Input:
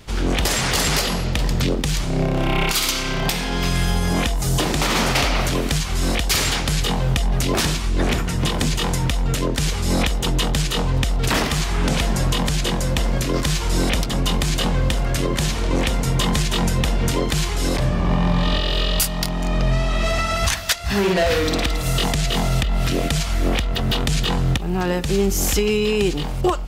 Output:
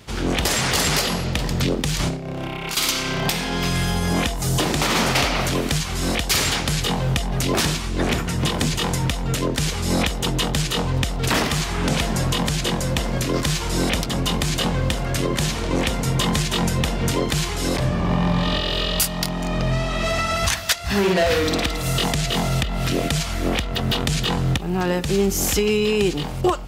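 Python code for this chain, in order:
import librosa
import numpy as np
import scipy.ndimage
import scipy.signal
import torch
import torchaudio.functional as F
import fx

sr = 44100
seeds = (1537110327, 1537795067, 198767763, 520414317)

y = scipy.signal.sosfilt(scipy.signal.butter(2, 63.0, 'highpass', fs=sr, output='sos'), x)
y = fx.over_compress(y, sr, threshold_db=-25.0, ratio=-0.5, at=(1.99, 2.77))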